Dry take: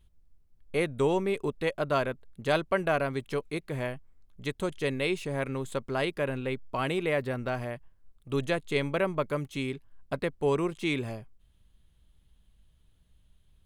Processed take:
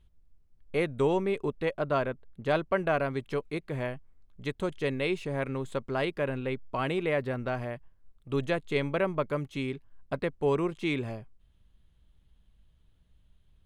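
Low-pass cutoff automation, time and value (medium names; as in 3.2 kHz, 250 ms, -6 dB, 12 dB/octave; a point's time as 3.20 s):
low-pass 6 dB/octave
1.19 s 4 kHz
1.83 s 2.1 kHz
2.57 s 2.1 kHz
3.04 s 3.6 kHz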